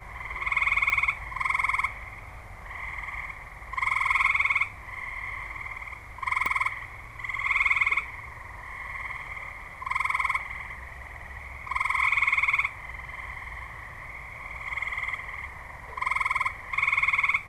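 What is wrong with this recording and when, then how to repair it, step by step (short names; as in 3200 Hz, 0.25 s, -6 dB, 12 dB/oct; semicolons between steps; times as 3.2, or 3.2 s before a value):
0.9 pop -14 dBFS
6.46 pop -14 dBFS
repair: de-click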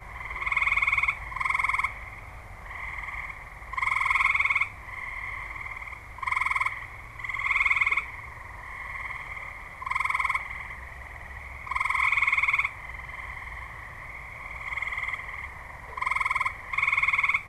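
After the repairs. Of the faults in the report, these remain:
0.9 pop
6.46 pop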